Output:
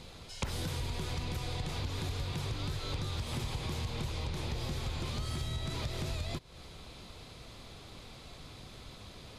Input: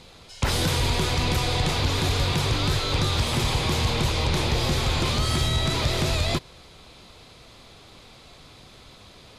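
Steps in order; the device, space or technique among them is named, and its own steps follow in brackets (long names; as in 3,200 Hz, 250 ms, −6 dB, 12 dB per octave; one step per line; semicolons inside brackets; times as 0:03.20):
ASMR close-microphone chain (low-shelf EQ 250 Hz +5.5 dB; downward compressor 8 to 1, threshold −30 dBFS, peak gain reduction 16 dB; high-shelf EQ 11,000 Hz +3.5 dB)
level −3.5 dB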